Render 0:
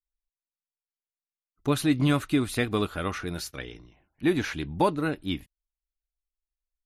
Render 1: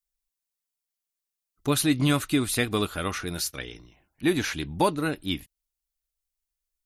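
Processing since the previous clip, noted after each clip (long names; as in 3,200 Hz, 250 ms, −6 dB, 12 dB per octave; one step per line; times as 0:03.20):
high-shelf EQ 3,900 Hz +10.5 dB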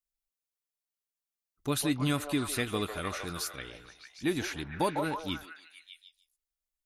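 echo through a band-pass that steps 151 ms, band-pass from 680 Hz, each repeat 0.7 octaves, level −2 dB
level −6.5 dB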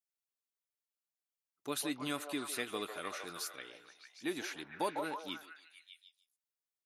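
high-pass filter 310 Hz 12 dB per octave
level −5.5 dB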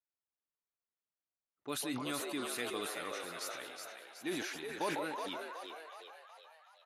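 low-pass that shuts in the quiet parts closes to 1,700 Hz, open at −37.5 dBFS
on a send: echo with shifted repeats 371 ms, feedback 52%, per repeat +80 Hz, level −6 dB
on the sum: level that may fall only so fast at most 37 dB per second
level −2 dB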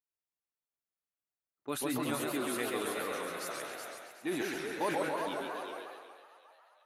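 noise gate −49 dBFS, range −7 dB
parametric band 4,700 Hz −7 dB 1.7 octaves
feedback echo with a swinging delay time 134 ms, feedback 49%, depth 150 cents, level −4 dB
level +3.5 dB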